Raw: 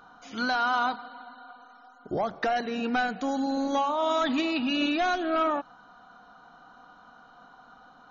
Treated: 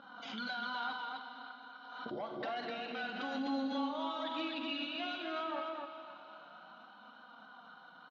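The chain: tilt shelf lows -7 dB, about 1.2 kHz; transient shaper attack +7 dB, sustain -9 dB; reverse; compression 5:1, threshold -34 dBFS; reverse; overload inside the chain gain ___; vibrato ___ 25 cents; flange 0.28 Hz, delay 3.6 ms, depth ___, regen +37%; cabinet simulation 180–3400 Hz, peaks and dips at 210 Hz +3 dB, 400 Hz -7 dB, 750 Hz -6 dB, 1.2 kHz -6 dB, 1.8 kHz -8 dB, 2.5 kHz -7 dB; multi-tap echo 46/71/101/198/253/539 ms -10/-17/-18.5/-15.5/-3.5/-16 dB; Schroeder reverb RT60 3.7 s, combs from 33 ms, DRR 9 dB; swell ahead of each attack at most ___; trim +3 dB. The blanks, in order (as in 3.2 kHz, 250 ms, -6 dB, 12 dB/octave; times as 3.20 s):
29.5 dB, 3.5 Hz, 5.9 ms, 44 dB/s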